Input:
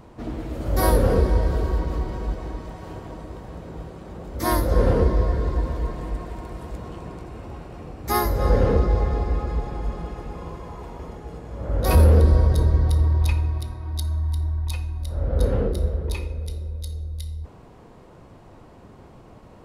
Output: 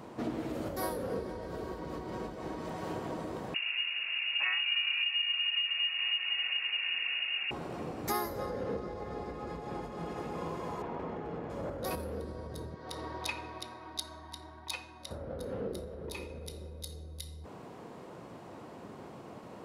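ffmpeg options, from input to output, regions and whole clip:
-filter_complex "[0:a]asettb=1/sr,asplit=3[s0][s1][s2];[s0]atrim=end=3.544[s3];[s1]atrim=start=3.54:end=7.51,asetpts=PTS-STARTPTS,afade=t=in:d=0.004:c=qsin,afade=t=out:st=3.966:d=0.004:c=qsin,aeval=exprs='val(0)+0.01*(sin(2*PI*50*n/s)+sin(2*PI*2*50*n/s)/2+sin(2*PI*3*50*n/s)/3+sin(2*PI*4*50*n/s)/4+sin(2*PI*5*50*n/s)/5)':c=same,lowpass=f=2500:t=q:w=0.5098,lowpass=f=2500:t=q:w=0.6013,lowpass=f=2500:t=q:w=0.9,lowpass=f=2500:t=q:w=2.563,afreqshift=-2900[s4];[s2]atrim=start=7.506[s5];[s3][s4]acrossfade=d=0.004:c1=hsin:c2=qsin[s6];[s6][s5]acrossfade=d=0.004:c1=qsin:c2=hsin,asettb=1/sr,asplit=3[s7][s8][s9];[s7]atrim=end=10.824[s10];[s8]atrim=start=10.82:end=11.5,asetpts=PTS-STARTPTS,afade=t=in:d=0.004:c=qsin,afade=t=out:st=0.676:d=0.004:c=qsin,lowpass=2500,asoftclip=type=hard:threshold=0.0335[s11];[s9]atrim=start=11.496[s12];[s10][s11]acrossfade=d=0.004:c1=hsin:c2=qsin[s13];[s13][s12]acrossfade=d=0.004:c1=qsin:c2=hsin,asettb=1/sr,asplit=3[s14][s15][s16];[s14]atrim=end=12.744[s17];[s15]atrim=start=12.74:end=15.11,asetpts=PTS-STARTPTS,afade=t=in:d=0.004:c=qsin,afade=t=out:st=2.366:d=0.004:c=qsin,highpass=f=690:p=1,adynamicsmooth=sensitivity=3.5:basefreq=7200[s18];[s16]atrim=start=15.106[s19];[s17][s18]acrossfade=d=0.004:c1=hsin:c2=qsin[s20];[s20][s19]acrossfade=d=0.004:c1=qsin:c2=hsin,acompressor=threshold=0.0316:ratio=12,highpass=170,volume=1.19"

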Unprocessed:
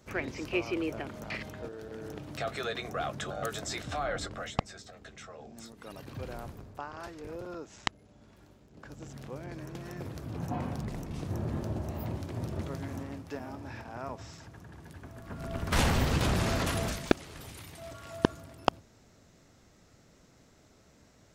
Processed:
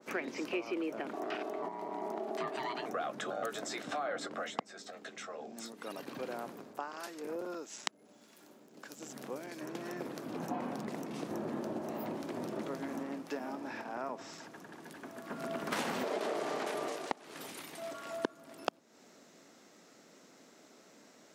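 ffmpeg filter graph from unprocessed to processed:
-filter_complex "[0:a]asettb=1/sr,asplit=3[s0][s1][s2];[s0]atrim=end=1.134[s3];[s1]atrim=start=1.13:end=2.86,asetpts=PTS-STARTPTS,afade=t=in:d=0.004:c=qsin,afade=t=out:st=1.726:d=0.004:c=qsin,equalizer=f=120:w=0.57:g=9.5,aeval=exprs='val(0)*sin(2*PI*520*n/s)':c=same[s4];[s2]atrim=start=2.856[s5];[s3][s4]acrossfade=d=0.004:c1=hsin:c2=qsin[s6];[s6][s5]acrossfade=d=0.004:c1=qsin:c2=hsin,asettb=1/sr,asplit=3[s7][s8][s9];[s7]atrim=end=6.734[s10];[s8]atrim=start=6.73:end=9.61,asetpts=PTS-STARTPTS,afade=t=in:d=0.004:c=qsin,afade=t=out:st=2.876:d=0.004:c=qsin,highshelf=f=7000:g=12,acrossover=split=1900[s11][s12];[s11]aeval=exprs='val(0)*(1-0.5/2+0.5/2*cos(2*PI*1.6*n/s))':c=same[s13];[s12]aeval=exprs='val(0)*(1-0.5/2-0.5/2*cos(2*PI*1.6*n/s))':c=same[s14];[s13][s14]amix=inputs=2:normalize=0[s15];[s9]atrim=start=9.606[s16];[s10][s15]acrossfade=d=0.004:c1=hsin:c2=qsin[s17];[s17][s16]acrossfade=d=0.004:c1=qsin:c2=hsin,asettb=1/sr,asplit=3[s18][s19][s20];[s18]atrim=end=16.034[s21];[s19]atrim=start=16.03:end=17.24,asetpts=PTS-STARTPTS,afade=t=in:d=0.004:c=qsin,afade=t=out:st=1.206:d=0.004:c=qsin,lowpass=12000,aeval=exprs='val(0)*sin(2*PI*520*n/s)':c=same[s22];[s20]atrim=start=17.236[s23];[s21][s22]acrossfade=d=0.004:c1=hsin:c2=qsin[s24];[s24][s23]acrossfade=d=0.004:c1=qsin:c2=hsin,highpass=f=220:w=0.5412,highpass=f=220:w=1.3066,acompressor=threshold=0.0126:ratio=3,adynamicequalizer=threshold=0.002:dfrequency=2200:dqfactor=0.7:tfrequency=2200:tqfactor=0.7:attack=5:release=100:ratio=0.375:range=2.5:mode=cutabove:tftype=highshelf,volume=1.5"

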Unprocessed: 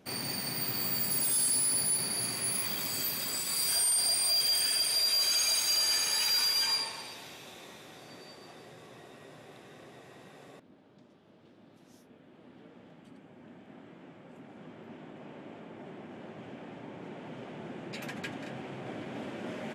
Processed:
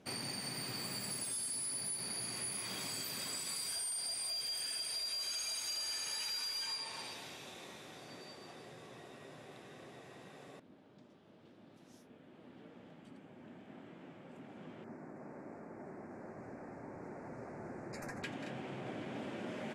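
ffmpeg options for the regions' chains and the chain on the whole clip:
-filter_complex "[0:a]asettb=1/sr,asplit=3[s0][s1][s2];[s0]atrim=end=14.844[s3];[s1]atrim=start=14.84:end=18.23,asetpts=PTS-STARTPTS,afade=t=in:d=0.004:c=qsin,afade=t=out:st=3.386:d=0.004:c=qsin,asubboost=boost=10.5:cutoff=60,asuperstop=centerf=3200:order=4:qfactor=1[s4];[s2]atrim=start=18.226[s5];[s3][s4]acrossfade=d=0.004:c1=hsin:c2=qsin[s6];[s6][s5]acrossfade=d=0.004:c1=qsin:c2=hsin,lowpass=f=12000:w=0.5412,lowpass=f=12000:w=1.3066,acompressor=threshold=0.0158:ratio=6,volume=0.794"

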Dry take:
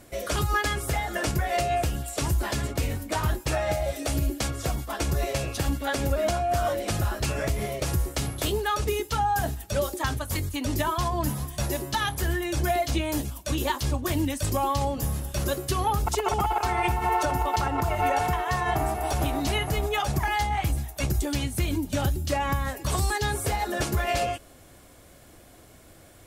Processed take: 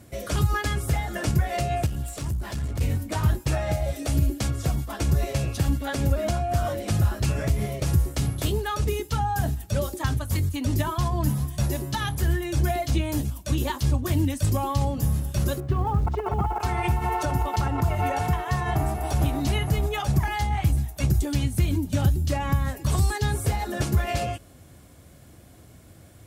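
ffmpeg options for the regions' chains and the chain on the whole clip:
-filter_complex "[0:a]asettb=1/sr,asplit=3[s0][s1][s2];[s0]atrim=end=1.864[s3];[s1]atrim=start=1.86:end=2.81,asetpts=PTS-STARTPTS,afade=t=in:d=0.004:c=qsin,afade=t=out:st=0.946:d=0.004:c=qsin,asubboost=boost=7:cutoff=100,acompressor=threshold=0.0398:ratio=4:attack=3.2:release=140:knee=1:detection=peak,aeval=exprs='clip(val(0),-1,0.0266)':c=same[s4];[s2]atrim=start=2.806[s5];[s3][s4]acrossfade=d=0.004:c1=hsin:c2=qsin[s6];[s6][s5]acrossfade=d=0.004:c1=qsin:c2=hsin,asettb=1/sr,asplit=3[s7][s8][s9];[s7]atrim=end=15.604[s10];[s8]atrim=start=15.6:end=16.6,asetpts=PTS-STARTPTS,afade=t=in:d=0.004:c=qsin,afade=t=out:st=0.996:d=0.004:c=qsin,lowpass=1600,acrusher=bits=8:mode=log:mix=0:aa=0.000001[s11];[s9]atrim=start=16.596[s12];[s10][s11]acrossfade=d=0.004:c1=hsin:c2=qsin[s13];[s13][s12]acrossfade=d=0.004:c1=qsin:c2=hsin,highpass=70,bass=f=250:g=11,treble=f=4000:g=1,volume=0.708"

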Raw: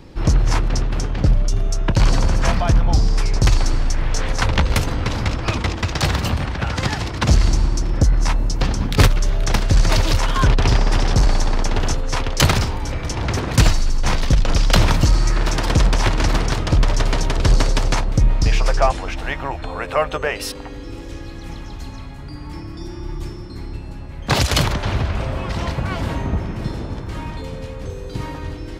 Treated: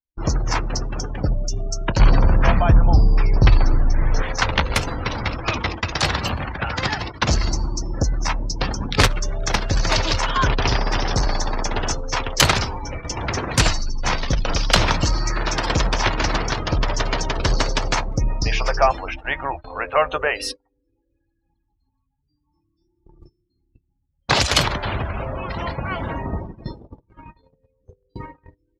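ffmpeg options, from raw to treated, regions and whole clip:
-filter_complex "[0:a]asettb=1/sr,asplit=3[s0][s1][s2];[s0]atrim=end=1.994[s3];[s1]atrim=start=1.99:end=4.23,asetpts=PTS-STARTPTS,afade=t=in:d=0.004:c=qsin,afade=t=out:st=2.236:d=0.004:c=qsin,lowpass=3900,lowshelf=f=290:g=8.5[s4];[s2]atrim=start=4.226[s5];[s3][s4]acrossfade=d=0.004:c1=hsin:c2=qsin[s6];[s6][s5]acrossfade=d=0.004:c1=qsin:c2=hsin,lowshelf=f=380:g=-9.5,afftdn=nr=31:nf=-32,agate=range=0.0251:threshold=0.0251:ratio=16:detection=peak,volume=1.41"

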